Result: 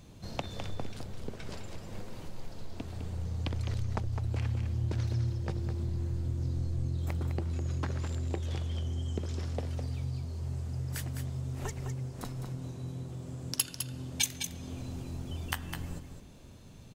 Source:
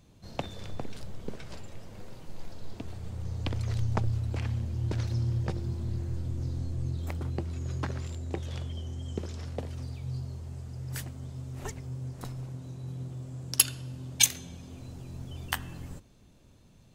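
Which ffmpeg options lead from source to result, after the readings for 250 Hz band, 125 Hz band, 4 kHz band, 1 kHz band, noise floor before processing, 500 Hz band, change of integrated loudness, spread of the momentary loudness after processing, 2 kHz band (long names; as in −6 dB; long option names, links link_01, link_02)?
−0.5 dB, −0.5 dB, −4.5 dB, −1.5 dB, −57 dBFS, −1.0 dB, −2.5 dB, 12 LU, −3.0 dB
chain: -filter_complex "[0:a]acompressor=threshold=-44dB:ratio=2,asplit=2[link_01][link_02];[link_02]aecho=0:1:207:0.422[link_03];[link_01][link_03]amix=inputs=2:normalize=0,volume=6dB"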